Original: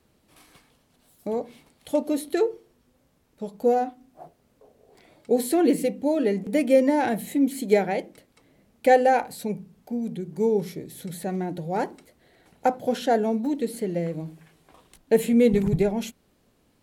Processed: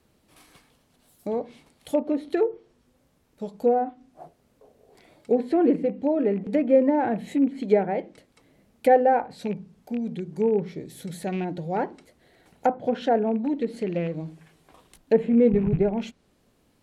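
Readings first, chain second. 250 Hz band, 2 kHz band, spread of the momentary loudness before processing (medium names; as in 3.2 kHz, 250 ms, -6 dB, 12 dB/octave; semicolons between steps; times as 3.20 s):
0.0 dB, -4.5 dB, 14 LU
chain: rattle on loud lows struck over -28 dBFS, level -30 dBFS; low-pass that closes with the level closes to 1.4 kHz, closed at -19.5 dBFS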